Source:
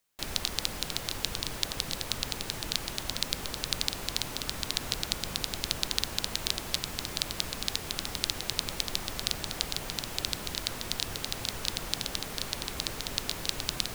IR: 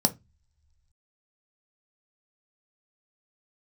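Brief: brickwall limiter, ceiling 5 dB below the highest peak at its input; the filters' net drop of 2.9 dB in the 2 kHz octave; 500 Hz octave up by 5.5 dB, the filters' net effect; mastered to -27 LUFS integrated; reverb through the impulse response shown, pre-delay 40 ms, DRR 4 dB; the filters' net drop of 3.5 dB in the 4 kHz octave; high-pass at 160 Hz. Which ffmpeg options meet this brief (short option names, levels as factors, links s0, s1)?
-filter_complex "[0:a]highpass=160,equalizer=f=500:t=o:g=7,equalizer=f=2000:t=o:g=-3,equalizer=f=4000:t=o:g=-3.5,alimiter=limit=0.299:level=0:latency=1,asplit=2[s0][s1];[1:a]atrim=start_sample=2205,adelay=40[s2];[s1][s2]afir=irnorm=-1:irlink=0,volume=0.211[s3];[s0][s3]amix=inputs=2:normalize=0,volume=2.11"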